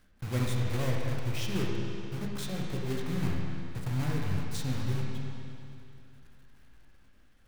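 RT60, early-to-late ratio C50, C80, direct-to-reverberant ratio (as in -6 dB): 2.7 s, -0.5 dB, 1.0 dB, -2.0 dB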